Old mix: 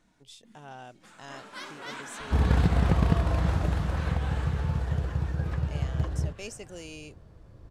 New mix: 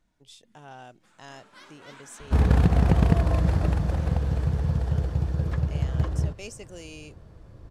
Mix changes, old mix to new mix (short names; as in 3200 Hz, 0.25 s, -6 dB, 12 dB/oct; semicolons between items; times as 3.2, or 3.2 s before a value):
first sound -9.0 dB; second sound +3.5 dB